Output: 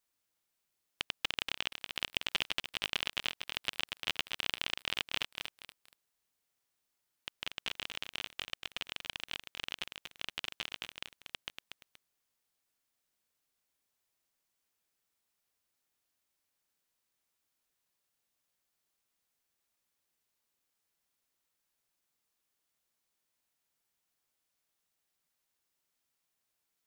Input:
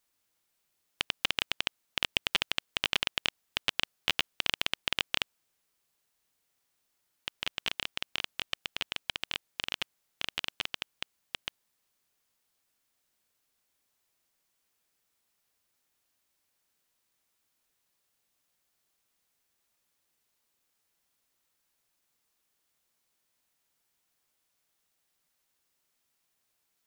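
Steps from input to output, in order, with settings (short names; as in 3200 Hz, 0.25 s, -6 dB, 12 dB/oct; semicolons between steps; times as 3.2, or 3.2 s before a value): lo-fi delay 0.237 s, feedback 35%, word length 6-bit, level -5.5 dB; gain -5.5 dB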